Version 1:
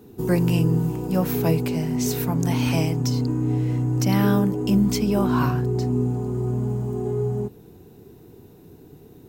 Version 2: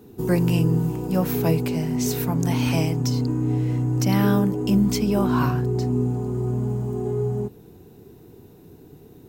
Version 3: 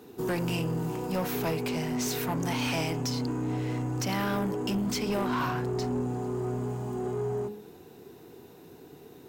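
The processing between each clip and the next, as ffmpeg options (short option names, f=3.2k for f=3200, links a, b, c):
-af anull
-filter_complex "[0:a]alimiter=limit=-13dB:level=0:latency=1:release=200,bandreject=f=104.5:t=h:w=4,bandreject=f=209:t=h:w=4,bandreject=f=313.5:t=h:w=4,bandreject=f=418:t=h:w=4,bandreject=f=522.5:t=h:w=4,bandreject=f=627:t=h:w=4,bandreject=f=731.5:t=h:w=4,bandreject=f=836:t=h:w=4,bandreject=f=940.5:t=h:w=4,bandreject=f=1.045k:t=h:w=4,bandreject=f=1.1495k:t=h:w=4,bandreject=f=1.254k:t=h:w=4,bandreject=f=1.3585k:t=h:w=4,bandreject=f=1.463k:t=h:w=4,bandreject=f=1.5675k:t=h:w=4,bandreject=f=1.672k:t=h:w=4,bandreject=f=1.7765k:t=h:w=4,bandreject=f=1.881k:t=h:w=4,bandreject=f=1.9855k:t=h:w=4,bandreject=f=2.09k:t=h:w=4,bandreject=f=2.1945k:t=h:w=4,bandreject=f=2.299k:t=h:w=4,bandreject=f=2.4035k:t=h:w=4,bandreject=f=2.508k:t=h:w=4,bandreject=f=2.6125k:t=h:w=4,bandreject=f=2.717k:t=h:w=4,bandreject=f=2.8215k:t=h:w=4,bandreject=f=2.926k:t=h:w=4,bandreject=f=3.0305k:t=h:w=4,bandreject=f=3.135k:t=h:w=4,bandreject=f=3.2395k:t=h:w=4,bandreject=f=3.344k:t=h:w=4,bandreject=f=3.4485k:t=h:w=4,asplit=2[a][b];[b]highpass=f=720:p=1,volume=20dB,asoftclip=type=tanh:threshold=-12dB[c];[a][c]amix=inputs=2:normalize=0,lowpass=f=5.4k:p=1,volume=-6dB,volume=-9dB"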